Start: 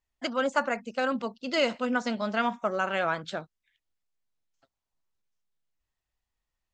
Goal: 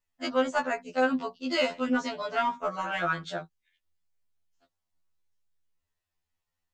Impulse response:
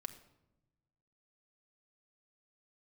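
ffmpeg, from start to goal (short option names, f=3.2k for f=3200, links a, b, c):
-filter_complex "[0:a]asplit=2[a][b];[b]asoftclip=type=hard:threshold=-22dB,volume=-11dB[c];[a][c]amix=inputs=2:normalize=0,afftfilt=real='re*2*eq(mod(b,4),0)':imag='im*2*eq(mod(b,4),0)':win_size=2048:overlap=0.75"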